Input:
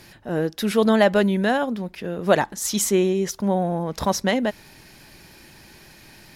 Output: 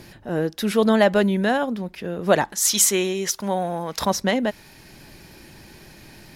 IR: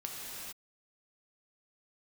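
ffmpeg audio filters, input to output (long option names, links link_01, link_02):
-filter_complex "[0:a]asettb=1/sr,asplit=3[link_01][link_02][link_03];[link_01]atrim=end=2.524[link_04];[link_02]atrim=start=2.52:end=4.05,asetpts=PTS-STARTPTS,afade=type=in:duration=0.004:curve=qsin,afade=type=out:start_time=1.526:duration=0.004:curve=qsin,tiltshelf=frequency=680:gain=-7[link_05];[link_03]atrim=start=4.046[link_06];[link_04][link_05]acrossfade=duration=0.004:curve1=hsin:curve2=qsin[link_07];[link_07][link_06]acrossfade=duration=0.004:curve1=qsin:curve2=hsin,acrossover=split=660|3300[link_08][link_09][link_10];[link_08]acompressor=mode=upward:threshold=-40dB:ratio=2.5[link_11];[link_11][link_09][link_10]amix=inputs=3:normalize=0"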